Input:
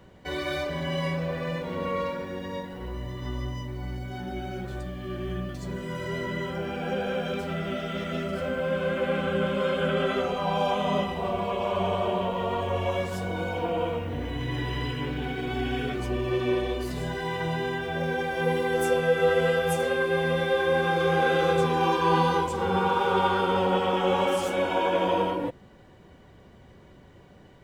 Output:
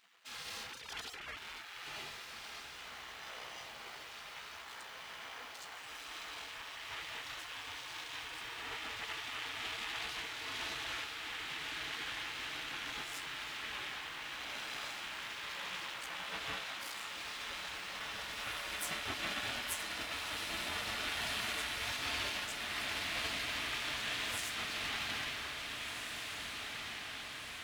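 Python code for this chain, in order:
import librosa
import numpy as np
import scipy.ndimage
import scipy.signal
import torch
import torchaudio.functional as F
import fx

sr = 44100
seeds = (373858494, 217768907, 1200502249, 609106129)

p1 = fx.sine_speech(x, sr, at=(0.72, 1.37))
p2 = np.maximum(p1, 0.0)
p3 = fx.spec_gate(p2, sr, threshold_db=-25, keep='weak')
p4 = p3 + fx.echo_diffused(p3, sr, ms=1783, feedback_pct=64, wet_db=-4.5, dry=0)
y = p4 * librosa.db_to_amplitude(1.0)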